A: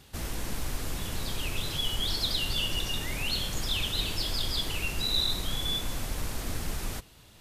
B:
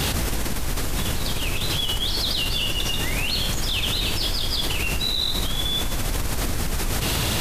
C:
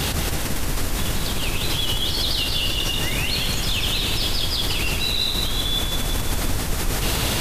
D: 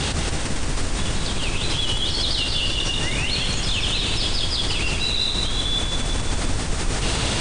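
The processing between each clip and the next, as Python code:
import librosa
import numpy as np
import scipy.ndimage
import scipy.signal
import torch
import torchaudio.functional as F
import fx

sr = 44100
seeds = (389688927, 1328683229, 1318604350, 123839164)

y1 = fx.env_flatten(x, sr, amount_pct=100)
y1 = y1 * 10.0 ** (1.0 / 20.0)
y2 = fx.echo_feedback(y1, sr, ms=175, feedback_pct=57, wet_db=-5.5)
y3 = fx.brickwall_lowpass(y2, sr, high_hz=9700.0)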